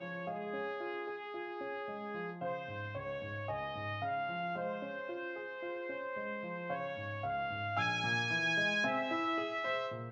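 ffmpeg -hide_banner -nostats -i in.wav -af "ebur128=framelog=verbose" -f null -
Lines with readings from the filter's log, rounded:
Integrated loudness:
  I:         -37.2 LUFS
  Threshold: -47.2 LUFS
Loudness range:
  LRA:         7.0 LU
  Threshold: -57.8 LUFS
  LRA low:   -41.0 LUFS
  LRA high:  -34.0 LUFS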